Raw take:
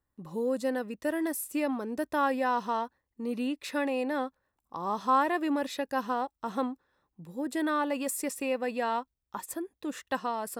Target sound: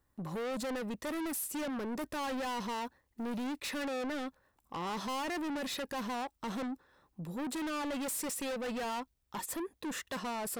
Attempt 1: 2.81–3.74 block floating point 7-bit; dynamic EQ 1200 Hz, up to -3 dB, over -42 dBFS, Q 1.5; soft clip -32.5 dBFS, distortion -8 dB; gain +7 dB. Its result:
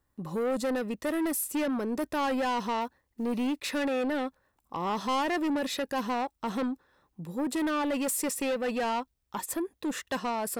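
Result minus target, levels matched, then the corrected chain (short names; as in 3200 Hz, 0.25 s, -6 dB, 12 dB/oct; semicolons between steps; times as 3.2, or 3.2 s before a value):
soft clip: distortion -5 dB
2.81–3.74 block floating point 7-bit; dynamic EQ 1200 Hz, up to -3 dB, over -42 dBFS, Q 1.5; soft clip -42 dBFS, distortion -4 dB; gain +7 dB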